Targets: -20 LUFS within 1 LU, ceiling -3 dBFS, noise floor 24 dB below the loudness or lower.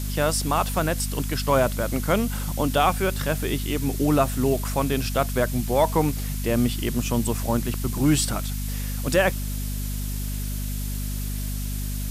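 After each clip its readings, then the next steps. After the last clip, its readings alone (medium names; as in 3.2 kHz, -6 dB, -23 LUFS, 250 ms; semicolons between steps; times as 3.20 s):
hum 50 Hz; highest harmonic 250 Hz; hum level -26 dBFS; noise floor -28 dBFS; noise floor target -49 dBFS; loudness -24.5 LUFS; peak level -8.0 dBFS; loudness target -20.0 LUFS
-> hum notches 50/100/150/200/250 Hz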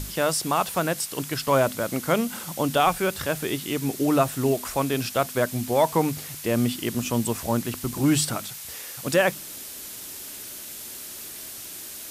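hum not found; noise floor -39 dBFS; noise floor target -50 dBFS
-> noise print and reduce 11 dB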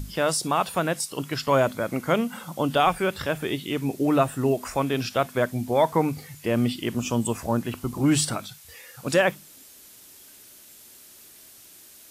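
noise floor -49 dBFS; loudness -25.0 LUFS; peak level -9.0 dBFS; loudness target -20.0 LUFS
-> trim +5 dB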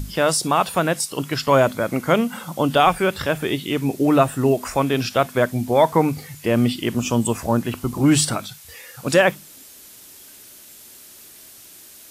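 loudness -20.0 LUFS; peak level -4.0 dBFS; noise floor -44 dBFS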